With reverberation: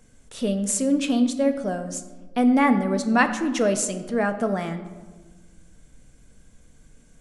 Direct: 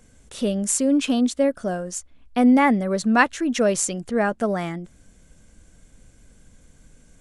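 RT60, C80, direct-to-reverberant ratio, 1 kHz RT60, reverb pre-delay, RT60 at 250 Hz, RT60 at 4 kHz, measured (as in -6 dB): 1.4 s, 12.5 dB, 7.5 dB, 1.3 s, 4 ms, 1.7 s, 0.80 s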